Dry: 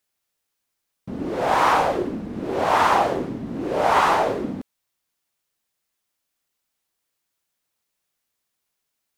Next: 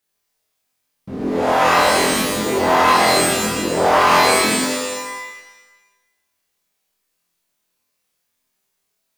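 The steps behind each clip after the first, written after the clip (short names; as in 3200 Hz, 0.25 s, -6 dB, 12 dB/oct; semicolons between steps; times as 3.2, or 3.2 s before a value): flutter echo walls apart 4 m, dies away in 0.55 s; maximiser +6 dB; shimmer reverb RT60 1.1 s, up +12 st, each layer -2 dB, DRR 2.5 dB; gain -6 dB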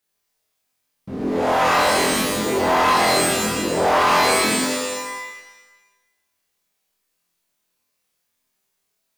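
soft clip -9 dBFS, distortion -17 dB; gain -1 dB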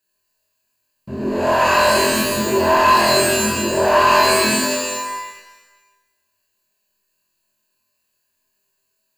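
ripple EQ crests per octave 1.4, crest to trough 13 dB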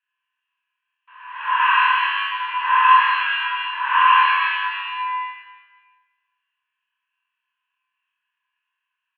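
Chebyshev band-pass 960–3300 Hz, order 5; doubler 28 ms -4 dB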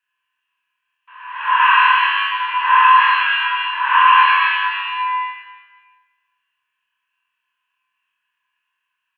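maximiser +5.5 dB; gain -1 dB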